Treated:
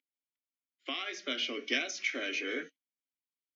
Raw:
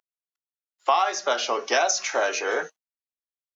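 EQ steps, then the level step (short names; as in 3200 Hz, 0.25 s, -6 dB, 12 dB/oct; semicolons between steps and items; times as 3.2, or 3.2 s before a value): vowel filter i; +8.0 dB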